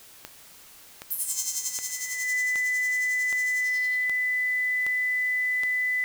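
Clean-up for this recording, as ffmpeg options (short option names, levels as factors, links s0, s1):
-af "adeclick=t=4,bandreject=f=2000:w=30,afwtdn=0.0032"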